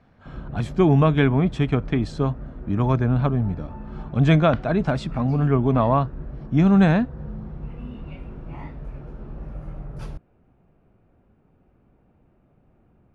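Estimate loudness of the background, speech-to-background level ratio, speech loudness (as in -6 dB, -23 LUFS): -37.5 LUFS, 16.5 dB, -21.0 LUFS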